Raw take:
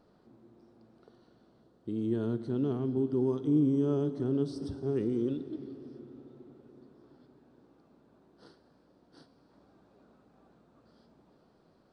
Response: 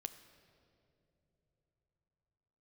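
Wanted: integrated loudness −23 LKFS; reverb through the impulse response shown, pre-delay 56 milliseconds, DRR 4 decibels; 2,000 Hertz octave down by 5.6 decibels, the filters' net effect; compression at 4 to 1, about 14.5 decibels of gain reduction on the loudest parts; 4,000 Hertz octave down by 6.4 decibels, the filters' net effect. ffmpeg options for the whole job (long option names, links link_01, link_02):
-filter_complex "[0:a]equalizer=frequency=2000:width_type=o:gain=-7.5,equalizer=frequency=4000:width_type=o:gain=-6,acompressor=threshold=-40dB:ratio=4,asplit=2[link_01][link_02];[1:a]atrim=start_sample=2205,adelay=56[link_03];[link_02][link_03]afir=irnorm=-1:irlink=0,volume=-0.5dB[link_04];[link_01][link_04]amix=inputs=2:normalize=0,volume=19dB"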